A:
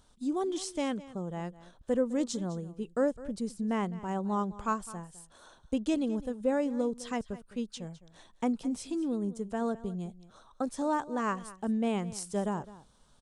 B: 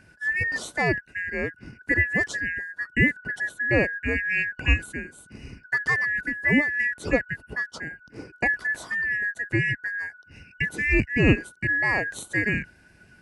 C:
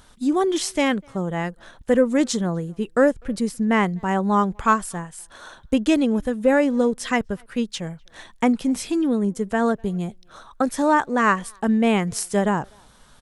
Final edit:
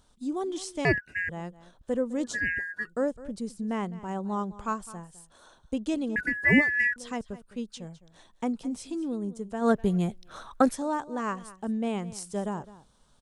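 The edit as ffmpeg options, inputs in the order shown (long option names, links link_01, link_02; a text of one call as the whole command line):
ffmpeg -i take0.wav -i take1.wav -i take2.wav -filter_complex "[1:a]asplit=3[link_01][link_02][link_03];[0:a]asplit=5[link_04][link_05][link_06][link_07][link_08];[link_04]atrim=end=0.852[link_09];[link_01]atrim=start=0.848:end=1.292[link_10];[link_05]atrim=start=1.288:end=2.4[link_11];[link_02]atrim=start=2.24:end=2.93[link_12];[link_06]atrim=start=2.77:end=6.162[link_13];[link_03]atrim=start=6.158:end=6.962[link_14];[link_07]atrim=start=6.958:end=9.71[link_15];[2:a]atrim=start=9.61:end=10.78[link_16];[link_08]atrim=start=10.68[link_17];[link_09][link_10]acrossfade=duration=0.004:curve1=hsin:curve2=hsin[link_18];[link_18][link_11]acrossfade=duration=0.004:curve1=hsin:curve2=hsin[link_19];[link_19][link_12]acrossfade=duration=0.16:curve1=tri:curve2=tri[link_20];[link_20][link_13]acrossfade=duration=0.16:curve1=tri:curve2=tri[link_21];[link_21][link_14]acrossfade=duration=0.004:curve1=hsin:curve2=hsin[link_22];[link_22][link_15]acrossfade=duration=0.004:curve1=hsin:curve2=hsin[link_23];[link_23][link_16]acrossfade=duration=0.1:curve1=tri:curve2=tri[link_24];[link_24][link_17]acrossfade=duration=0.1:curve1=tri:curve2=tri" out.wav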